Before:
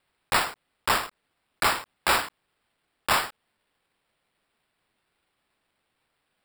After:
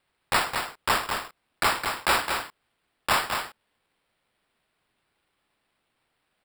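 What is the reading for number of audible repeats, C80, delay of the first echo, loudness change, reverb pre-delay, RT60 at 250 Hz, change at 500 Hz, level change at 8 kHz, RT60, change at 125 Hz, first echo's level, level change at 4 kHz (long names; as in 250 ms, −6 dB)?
1, no reverb audible, 214 ms, 0.0 dB, no reverb audible, no reverb audible, +1.0 dB, −0.5 dB, no reverb audible, +1.0 dB, −6.0 dB, +0.5 dB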